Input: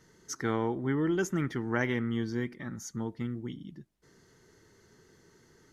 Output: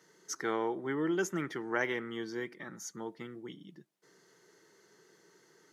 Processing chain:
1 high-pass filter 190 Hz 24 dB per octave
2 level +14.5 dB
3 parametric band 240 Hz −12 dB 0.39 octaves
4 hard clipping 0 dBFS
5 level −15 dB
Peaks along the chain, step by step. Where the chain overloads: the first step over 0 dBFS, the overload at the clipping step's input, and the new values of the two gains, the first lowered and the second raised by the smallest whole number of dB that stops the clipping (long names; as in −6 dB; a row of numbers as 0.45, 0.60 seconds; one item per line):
−15.0, −0.5, −1.5, −1.5, −16.5 dBFS
no step passes full scale